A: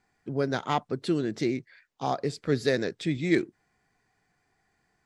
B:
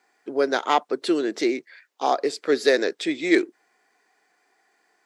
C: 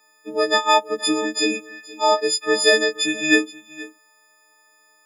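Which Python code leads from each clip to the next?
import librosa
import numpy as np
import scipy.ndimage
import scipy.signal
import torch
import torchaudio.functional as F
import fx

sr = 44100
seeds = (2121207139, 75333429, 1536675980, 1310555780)

y1 = scipy.signal.sosfilt(scipy.signal.butter(4, 320.0, 'highpass', fs=sr, output='sos'), x)
y1 = y1 * 10.0 ** (7.5 / 20.0)
y2 = fx.freq_snap(y1, sr, grid_st=6)
y2 = y2 + 10.0 ** (-19.5 / 20.0) * np.pad(y2, (int(474 * sr / 1000.0), 0))[:len(y2)]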